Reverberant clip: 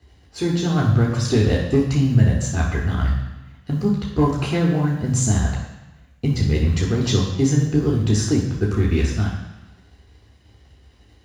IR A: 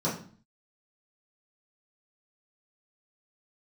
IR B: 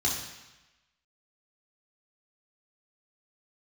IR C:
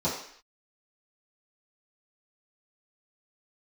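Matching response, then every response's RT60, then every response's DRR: B; 0.45 s, 1.0 s, 0.60 s; -9.0 dB, -4.0 dB, -11.5 dB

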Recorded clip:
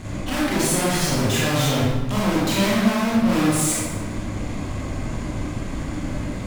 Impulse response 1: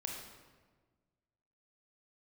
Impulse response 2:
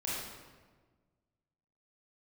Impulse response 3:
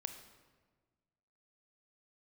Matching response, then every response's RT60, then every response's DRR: 2; 1.4 s, 1.4 s, 1.4 s; 0.0 dB, -7.5 dB, 7.0 dB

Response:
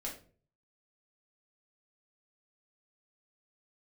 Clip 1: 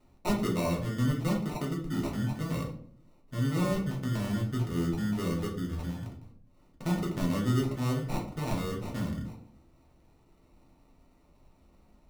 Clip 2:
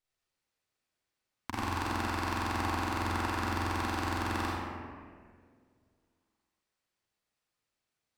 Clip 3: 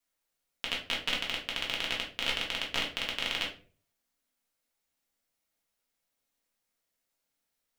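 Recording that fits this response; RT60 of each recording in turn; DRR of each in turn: 3; 0.60 s, 2.0 s, 0.45 s; -2.5 dB, -6.5 dB, -4.0 dB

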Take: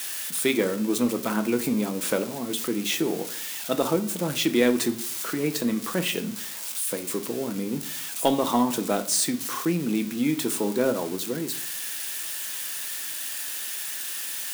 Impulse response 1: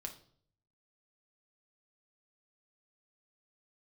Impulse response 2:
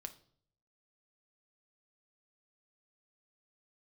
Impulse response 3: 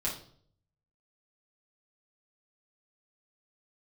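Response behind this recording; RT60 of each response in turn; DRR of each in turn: 2; 0.55 s, 0.60 s, 0.55 s; 3.5 dB, 8.0 dB, -5.5 dB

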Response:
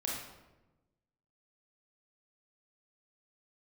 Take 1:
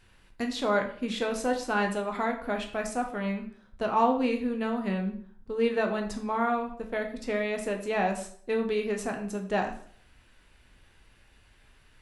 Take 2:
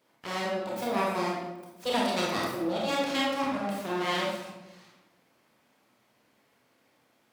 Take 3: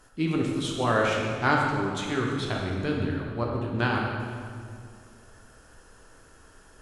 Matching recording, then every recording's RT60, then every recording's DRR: 2; 0.55 s, 1.1 s, 2.2 s; 2.5 dB, -4.0 dB, -1.5 dB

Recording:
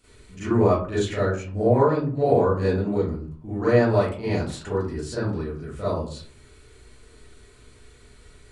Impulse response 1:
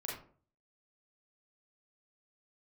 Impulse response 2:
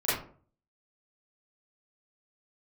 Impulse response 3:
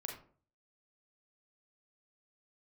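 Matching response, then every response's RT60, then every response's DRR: 2; 0.45 s, 0.45 s, 0.45 s; -4.5 dB, -13.0 dB, 0.5 dB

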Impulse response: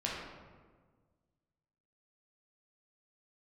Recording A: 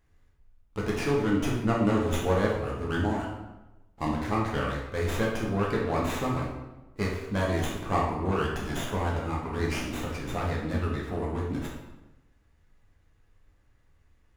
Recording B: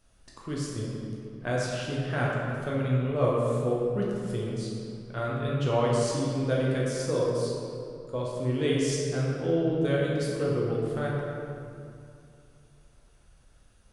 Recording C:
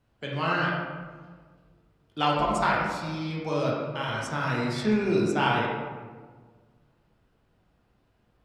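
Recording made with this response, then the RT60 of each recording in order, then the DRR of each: C; 1.0 s, 2.6 s, 1.5 s; -4.0 dB, -5.0 dB, -5.0 dB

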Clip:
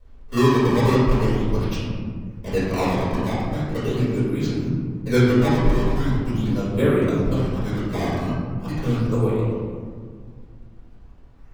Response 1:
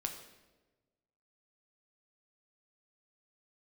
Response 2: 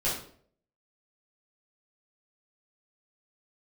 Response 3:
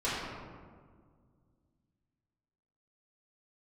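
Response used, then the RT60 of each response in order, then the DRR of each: 3; 1.2 s, 0.55 s, 1.8 s; 3.5 dB, -10.0 dB, -12.5 dB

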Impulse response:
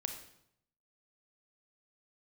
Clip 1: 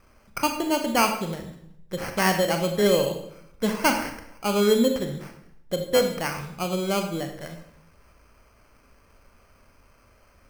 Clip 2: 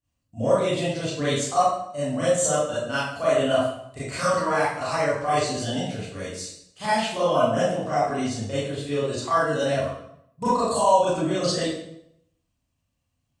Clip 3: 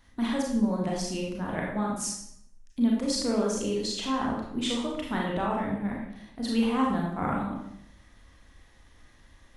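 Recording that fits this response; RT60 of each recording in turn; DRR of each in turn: 1; 0.75 s, 0.75 s, 0.75 s; 5.0 dB, -12.0 dB, -3.0 dB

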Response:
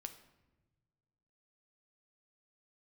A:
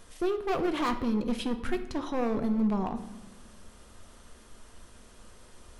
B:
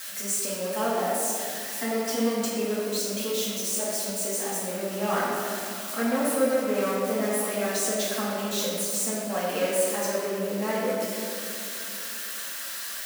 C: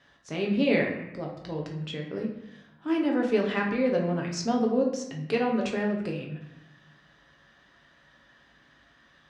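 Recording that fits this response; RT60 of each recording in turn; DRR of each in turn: A; 1.2 s, 2.5 s, 0.85 s; 7.0 dB, -9.0 dB, -0.5 dB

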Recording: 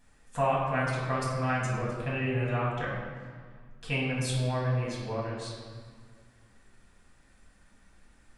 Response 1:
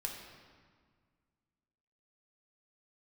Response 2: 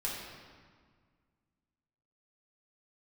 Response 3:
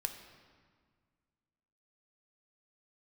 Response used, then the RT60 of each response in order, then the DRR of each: 2; 1.7 s, 1.7 s, 1.8 s; 0.0 dB, -5.5 dB, 6.0 dB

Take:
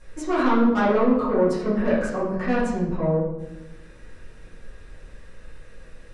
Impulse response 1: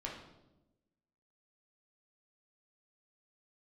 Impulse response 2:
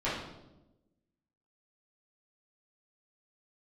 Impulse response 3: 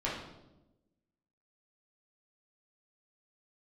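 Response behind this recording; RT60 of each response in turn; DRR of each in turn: 2; 1.0 s, 1.0 s, 1.0 s; -3.0 dB, -11.5 dB, -7.0 dB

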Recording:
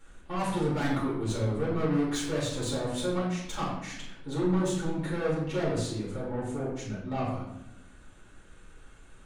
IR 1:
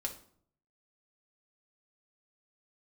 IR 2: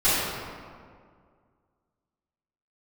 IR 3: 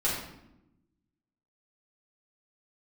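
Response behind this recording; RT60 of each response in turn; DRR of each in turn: 3; 0.60 s, 2.0 s, 0.85 s; 0.0 dB, -16.0 dB, -8.0 dB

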